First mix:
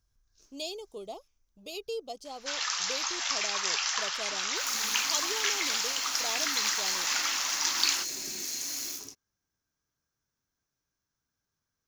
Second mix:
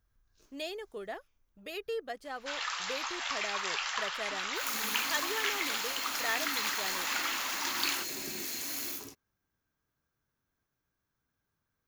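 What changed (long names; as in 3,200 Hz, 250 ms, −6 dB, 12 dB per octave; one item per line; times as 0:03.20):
speech: remove Butterworth band-reject 1,700 Hz, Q 1
second sound +4.0 dB
master: add parametric band 5,800 Hz −12.5 dB 0.91 octaves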